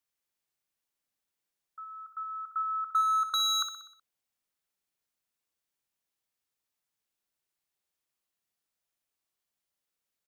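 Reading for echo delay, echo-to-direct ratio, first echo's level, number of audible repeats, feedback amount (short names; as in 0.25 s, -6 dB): 62 ms, -7.5 dB, -9.0 dB, 5, 53%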